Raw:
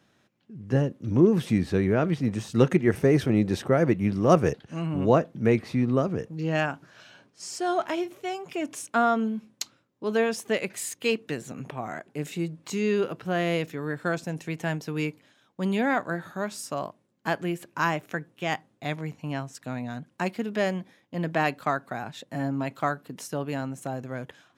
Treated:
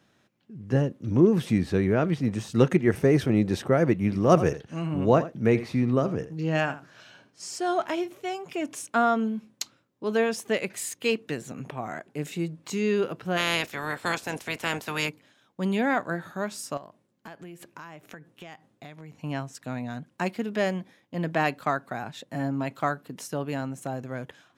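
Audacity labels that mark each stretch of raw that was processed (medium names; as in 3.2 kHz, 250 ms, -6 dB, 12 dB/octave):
4.000000	7.460000	delay 82 ms -14.5 dB
13.360000	15.080000	spectral peaks clipped ceiling under each frame's peak by 22 dB
16.770000	19.180000	compression, threshold -40 dBFS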